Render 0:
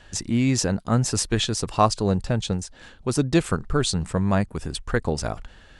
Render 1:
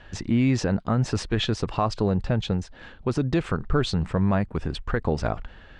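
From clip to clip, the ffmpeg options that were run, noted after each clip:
ffmpeg -i in.wav -af "lowpass=3000,alimiter=limit=-15dB:level=0:latency=1:release=75,volume=2.5dB" out.wav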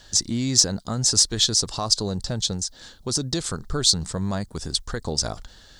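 ffmpeg -i in.wav -af "aexciter=amount=12.9:drive=7.9:freq=4000,volume=-4.5dB" out.wav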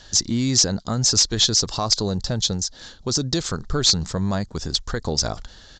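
ffmpeg -i in.wav -af "aeval=exprs='0.891*sin(PI/2*2.51*val(0)/0.891)':channel_layout=same,aresample=16000,aresample=44100,volume=-8.5dB" out.wav

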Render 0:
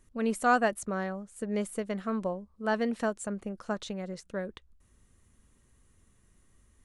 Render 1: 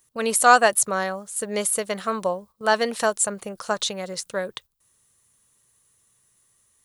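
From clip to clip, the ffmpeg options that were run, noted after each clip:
ffmpeg -i in.wav -af "aemphasis=mode=production:type=riaa,agate=range=-11dB:threshold=-54dB:ratio=16:detection=peak,equalizer=frequency=125:width_type=o:width=1:gain=12,equalizer=frequency=250:width_type=o:width=1:gain=-4,equalizer=frequency=500:width_type=o:width=1:gain=4,equalizer=frequency=1000:width_type=o:width=1:gain=5,equalizer=frequency=4000:width_type=o:width=1:gain=5,volume=6dB" out.wav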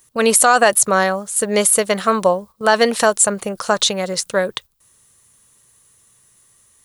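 ffmpeg -i in.wav -af "alimiter=level_in=10.5dB:limit=-1dB:release=50:level=0:latency=1,volume=-1dB" out.wav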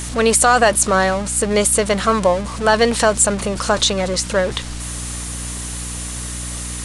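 ffmpeg -i in.wav -af "aeval=exprs='val(0)+0.5*0.0944*sgn(val(0))':channel_layout=same,aeval=exprs='val(0)+0.0447*(sin(2*PI*60*n/s)+sin(2*PI*2*60*n/s)/2+sin(2*PI*3*60*n/s)/3+sin(2*PI*4*60*n/s)/4+sin(2*PI*5*60*n/s)/5)':channel_layout=same,aresample=22050,aresample=44100,volume=-1.5dB" out.wav

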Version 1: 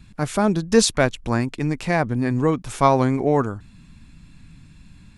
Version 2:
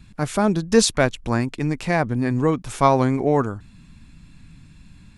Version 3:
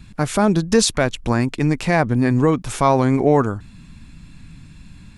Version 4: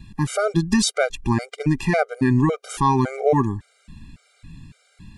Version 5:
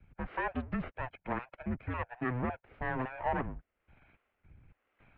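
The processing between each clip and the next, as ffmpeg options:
ffmpeg -i in.wav -af anull out.wav
ffmpeg -i in.wav -af "alimiter=limit=-10dB:level=0:latency=1:release=98,volume=5dB" out.wav
ffmpeg -i in.wav -af "afftfilt=real='re*gt(sin(2*PI*1.8*pts/sr)*(1-2*mod(floor(b*sr/1024/400),2)),0)':imag='im*gt(sin(2*PI*1.8*pts/sr)*(1-2*mod(floor(b*sr/1024/400),2)),0)':win_size=1024:overlap=0.75" out.wav
ffmpeg -i in.wav -filter_complex "[0:a]aeval=exprs='abs(val(0))':channel_layout=same,acrossover=split=500[link_01][link_02];[link_01]aeval=exprs='val(0)*(1-0.7/2+0.7/2*cos(2*PI*1.1*n/s))':channel_layout=same[link_03];[link_02]aeval=exprs='val(0)*(1-0.7/2-0.7/2*cos(2*PI*1.1*n/s))':channel_layout=same[link_04];[link_03][link_04]amix=inputs=2:normalize=0,highpass=frequency=180:width_type=q:width=0.5412,highpass=frequency=180:width_type=q:width=1.307,lowpass=frequency=2700:width_type=q:width=0.5176,lowpass=frequency=2700:width_type=q:width=0.7071,lowpass=frequency=2700:width_type=q:width=1.932,afreqshift=-250,volume=-6dB" out.wav

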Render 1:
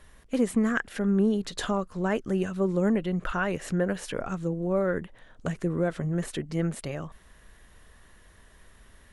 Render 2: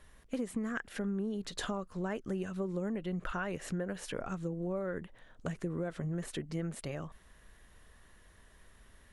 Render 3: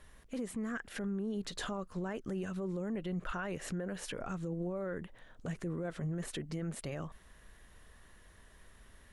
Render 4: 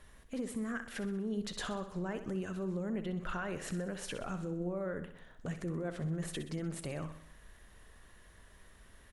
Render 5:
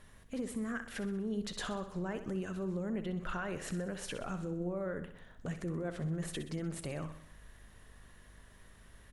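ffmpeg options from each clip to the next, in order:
ffmpeg -i in.wav -af "acompressor=threshold=-27dB:ratio=6,volume=-5dB" out.wav
ffmpeg -i in.wav -af "alimiter=level_in=7dB:limit=-24dB:level=0:latency=1:release=15,volume=-7dB,volume=1dB" out.wav
ffmpeg -i in.wav -af "aecho=1:1:63|126|189|252|315|378:0.282|0.155|0.0853|0.0469|0.0258|0.0142" out.wav
ffmpeg -i in.wav -af "aeval=exprs='val(0)+0.000891*(sin(2*PI*50*n/s)+sin(2*PI*2*50*n/s)/2+sin(2*PI*3*50*n/s)/3+sin(2*PI*4*50*n/s)/4+sin(2*PI*5*50*n/s)/5)':channel_layout=same" out.wav

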